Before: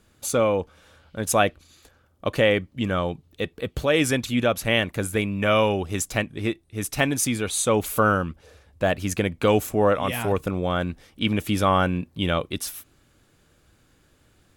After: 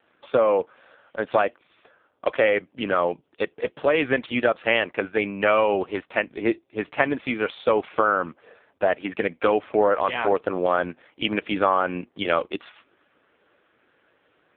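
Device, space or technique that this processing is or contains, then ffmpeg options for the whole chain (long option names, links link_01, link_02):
voicemail: -filter_complex "[0:a]asettb=1/sr,asplit=3[link_01][link_02][link_03];[link_01]atrim=end=6.394[link_04];[link_02]atrim=start=6.39:end=7.24,asetpts=PTS-STARTPTS,afade=type=in:duration=0.004:curve=qsin,afade=type=out:start_time=0.846:duration=0.004:curve=qsin,equalizer=frequency=280:width=0.33:gain=2.5[link_05];[link_03]atrim=start=7.236[link_06];[link_04][link_05]acrossfade=duration=0.004:curve1=hsin:curve2=qsin[link_07];[link_07][link_06]acrossfade=duration=0.004:curve1=qsin:curve2=hsin,highpass=420,lowpass=2700,acompressor=threshold=-22dB:ratio=8,volume=8dB" -ar 8000 -c:a libopencore_amrnb -b:a 5150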